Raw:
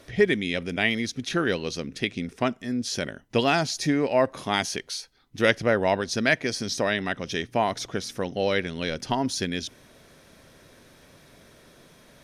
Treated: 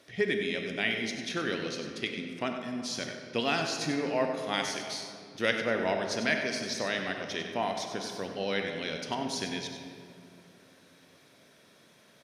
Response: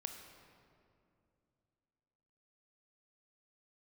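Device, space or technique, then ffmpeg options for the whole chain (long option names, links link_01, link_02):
PA in a hall: -filter_complex "[0:a]highpass=140,equalizer=frequency=3500:width_type=o:width=2.1:gain=4,aecho=1:1:96:0.316[link_01];[1:a]atrim=start_sample=2205[link_02];[link_01][link_02]afir=irnorm=-1:irlink=0,volume=-5dB"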